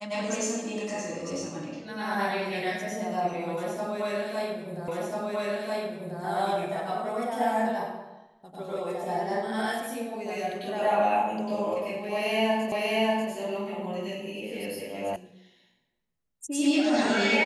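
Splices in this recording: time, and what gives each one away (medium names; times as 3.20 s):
4.88 s: repeat of the last 1.34 s
12.72 s: repeat of the last 0.59 s
15.16 s: sound stops dead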